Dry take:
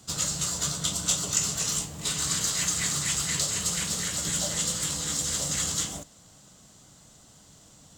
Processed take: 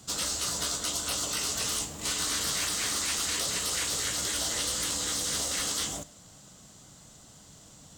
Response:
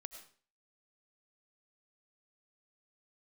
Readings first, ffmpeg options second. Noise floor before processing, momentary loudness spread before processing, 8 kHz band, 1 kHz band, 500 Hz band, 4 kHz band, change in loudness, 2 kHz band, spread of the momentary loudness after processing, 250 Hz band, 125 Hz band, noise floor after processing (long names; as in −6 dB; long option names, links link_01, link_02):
−55 dBFS, 3 LU, −3.5 dB, +1.5 dB, +0.5 dB, 0.0 dB, −2.0 dB, +0.5 dB, 2 LU, −4.0 dB, −8.5 dB, −53 dBFS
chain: -filter_complex "[0:a]asplit=2[link_01][link_02];[1:a]atrim=start_sample=2205[link_03];[link_02][link_03]afir=irnorm=-1:irlink=0,volume=-9.5dB[link_04];[link_01][link_04]amix=inputs=2:normalize=0,acrusher=bits=9:mode=log:mix=0:aa=0.000001,afftfilt=real='re*lt(hypot(re,im),0.0891)':imag='im*lt(hypot(re,im),0.0891)':win_size=1024:overlap=0.75"